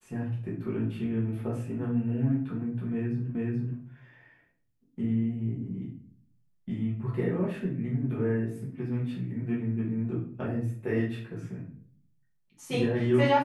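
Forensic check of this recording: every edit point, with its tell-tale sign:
0:03.35: the same again, the last 0.43 s

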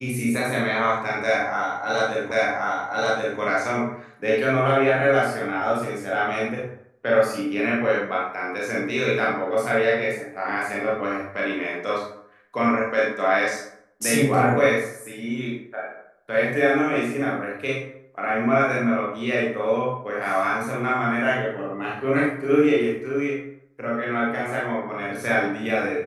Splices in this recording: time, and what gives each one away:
0:02.31: the same again, the last 1.08 s

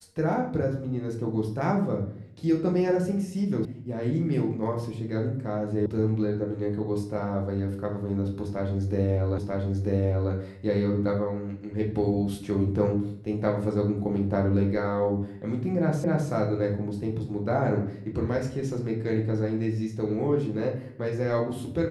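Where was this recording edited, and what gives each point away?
0:03.65: cut off before it has died away
0:05.86: cut off before it has died away
0:09.38: the same again, the last 0.94 s
0:16.04: the same again, the last 0.26 s

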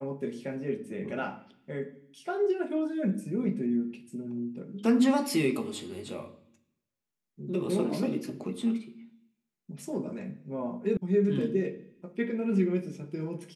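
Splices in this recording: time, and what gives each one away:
0:10.97: cut off before it has died away

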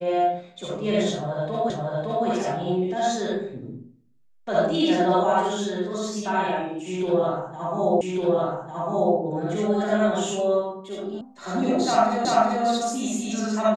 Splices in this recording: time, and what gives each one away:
0:01.70: the same again, the last 0.56 s
0:08.01: the same again, the last 1.15 s
0:11.21: cut off before it has died away
0:12.25: the same again, the last 0.39 s

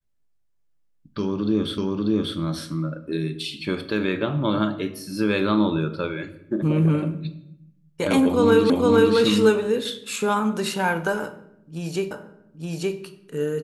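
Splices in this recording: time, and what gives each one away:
0:01.78: the same again, the last 0.59 s
0:08.70: the same again, the last 0.46 s
0:12.11: the same again, the last 0.87 s

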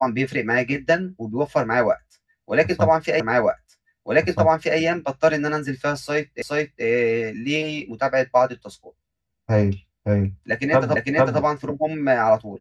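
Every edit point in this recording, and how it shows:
0:03.20: the same again, the last 1.58 s
0:06.42: the same again, the last 0.42 s
0:10.96: the same again, the last 0.45 s

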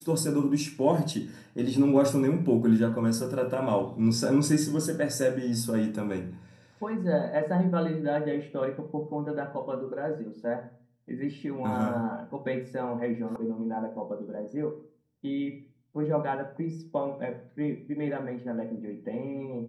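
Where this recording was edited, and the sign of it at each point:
0:13.36: cut off before it has died away

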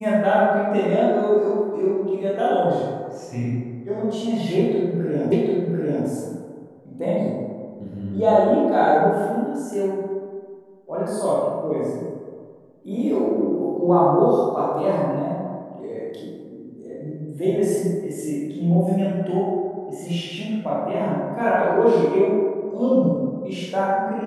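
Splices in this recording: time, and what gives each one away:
0:05.32: the same again, the last 0.74 s

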